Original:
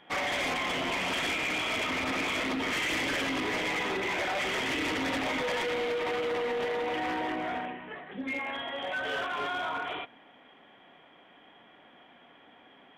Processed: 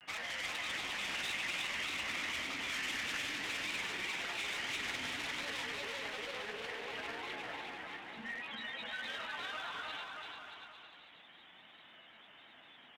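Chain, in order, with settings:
guitar amp tone stack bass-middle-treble 5-5-5
harmonic generator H 6 −35 dB, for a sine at −30.5 dBFS
in parallel at 0 dB: downward compressor, threshold −52 dBFS, peak gain reduction 14 dB
on the sum: granular cloud, spray 23 ms, pitch spread up and down by 3 semitones
on a send: bouncing-ball delay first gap 350 ms, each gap 0.8×, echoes 5
on the sum: upward compression, threshold −52 dBFS

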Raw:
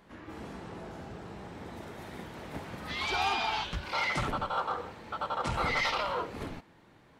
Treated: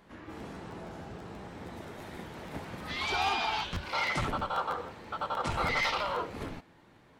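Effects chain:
regular buffer underruns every 0.16 s, samples 512, repeat, from 0:00.38

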